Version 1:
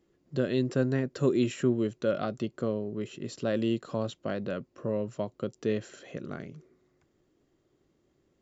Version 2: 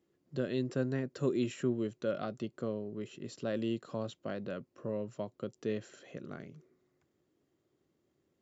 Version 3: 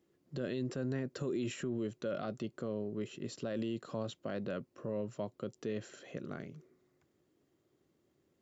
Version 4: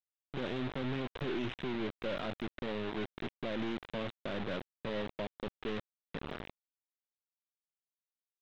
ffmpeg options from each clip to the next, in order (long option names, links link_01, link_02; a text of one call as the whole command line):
ffmpeg -i in.wav -af "highpass=78,volume=-6dB" out.wav
ffmpeg -i in.wav -af "alimiter=level_in=6dB:limit=-24dB:level=0:latency=1:release=34,volume=-6dB,volume=2dB" out.wav
ffmpeg -i in.wav -af "aeval=exprs='if(lt(val(0),0),0.447*val(0),val(0))':channel_layout=same,aresample=8000,acrusher=bits=6:mix=0:aa=0.000001,aresample=44100,asoftclip=type=tanh:threshold=-34dB,volume=5dB" out.wav